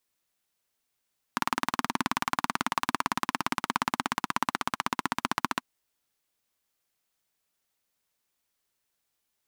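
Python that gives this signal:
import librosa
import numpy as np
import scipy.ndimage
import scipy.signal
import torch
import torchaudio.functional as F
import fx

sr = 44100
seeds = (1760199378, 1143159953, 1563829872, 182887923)

y = fx.engine_single_rev(sr, seeds[0], length_s=4.26, rpm=2300, resonances_hz=(250.0, 1000.0), end_rpm=1800)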